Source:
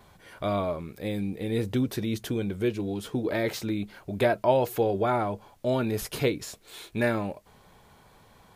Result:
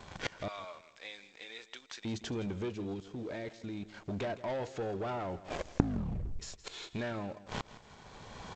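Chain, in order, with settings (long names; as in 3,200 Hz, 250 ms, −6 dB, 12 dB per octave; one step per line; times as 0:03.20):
camcorder AGC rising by 14 dB per second
0:00.48–0:02.05: high-pass filter 1,300 Hz 12 dB per octave
0:05.19: tape stop 1.20 s
high-shelf EQ 5,100 Hz +3.5 dB
0:02.94–0:03.94: output level in coarse steps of 15 dB
leveller curve on the samples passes 3
gate with flip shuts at −26 dBFS, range −28 dB
repeating echo 164 ms, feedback 31%, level −16 dB
level +7.5 dB
G.722 64 kbit/s 16,000 Hz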